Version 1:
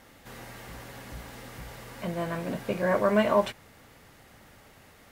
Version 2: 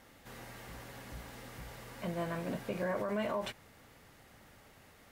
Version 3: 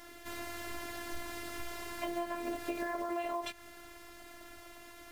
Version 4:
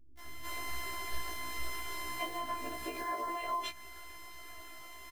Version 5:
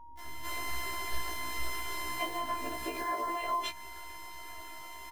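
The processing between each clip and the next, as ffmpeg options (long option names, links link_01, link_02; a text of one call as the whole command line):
ffmpeg -i in.wav -af "alimiter=limit=-21.5dB:level=0:latency=1:release=45,volume=-5dB" out.wav
ffmpeg -i in.wav -af "acrusher=bits=6:mode=log:mix=0:aa=0.000001,afftfilt=real='hypot(re,im)*cos(PI*b)':imag='0':win_size=512:overlap=0.75,acompressor=threshold=-44dB:ratio=6,volume=11.5dB" out.wav
ffmpeg -i in.wav -filter_complex "[0:a]acrossover=split=220[link_01][link_02];[link_02]adelay=190[link_03];[link_01][link_03]amix=inputs=2:normalize=0,afftfilt=real='re*1.73*eq(mod(b,3),0)':imag='im*1.73*eq(mod(b,3),0)':win_size=2048:overlap=0.75,volume=5dB" out.wav
ffmpeg -i in.wav -af "aeval=exprs='val(0)+0.00224*sin(2*PI*940*n/s)':channel_layout=same,volume=3dB" out.wav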